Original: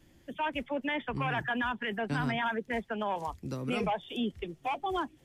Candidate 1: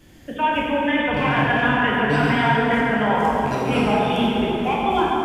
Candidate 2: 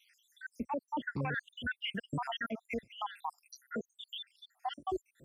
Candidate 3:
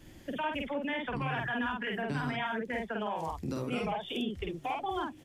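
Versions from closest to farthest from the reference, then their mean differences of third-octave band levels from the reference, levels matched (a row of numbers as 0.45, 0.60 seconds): 3, 1, 2; 4.5, 8.5, 16.0 decibels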